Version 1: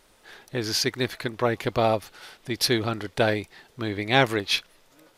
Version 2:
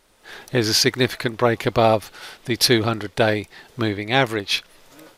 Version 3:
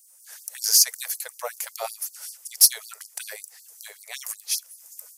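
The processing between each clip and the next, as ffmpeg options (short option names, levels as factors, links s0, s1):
-af "dynaudnorm=f=190:g=3:m=3.76,volume=0.891"
-af "aexciter=amount=11.9:drive=7:freq=5600,afftfilt=real='re*gte(b*sr/1024,420*pow(4300/420,0.5+0.5*sin(2*PI*5.3*pts/sr)))':imag='im*gte(b*sr/1024,420*pow(4300/420,0.5+0.5*sin(2*PI*5.3*pts/sr)))':win_size=1024:overlap=0.75,volume=0.237"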